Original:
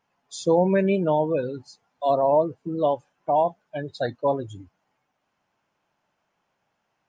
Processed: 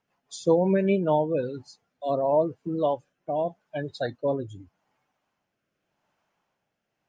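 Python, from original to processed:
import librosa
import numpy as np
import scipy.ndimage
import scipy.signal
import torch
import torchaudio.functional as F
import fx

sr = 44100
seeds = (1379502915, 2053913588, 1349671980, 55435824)

y = fx.rotary_switch(x, sr, hz=5.5, then_hz=0.85, switch_at_s=0.68)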